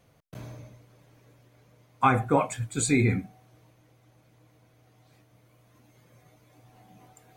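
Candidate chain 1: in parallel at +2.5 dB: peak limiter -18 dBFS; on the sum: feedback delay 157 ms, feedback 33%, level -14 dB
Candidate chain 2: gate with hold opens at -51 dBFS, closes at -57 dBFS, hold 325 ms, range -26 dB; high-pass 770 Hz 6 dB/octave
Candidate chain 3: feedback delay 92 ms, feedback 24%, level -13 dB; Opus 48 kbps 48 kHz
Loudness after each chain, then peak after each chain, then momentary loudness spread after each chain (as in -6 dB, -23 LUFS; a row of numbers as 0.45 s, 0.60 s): -21.0 LUFS, -29.5 LUFS, -25.5 LUFS; -5.5 dBFS, -10.5 dBFS, -8.5 dBFS; 20 LU, 8 LU, 20 LU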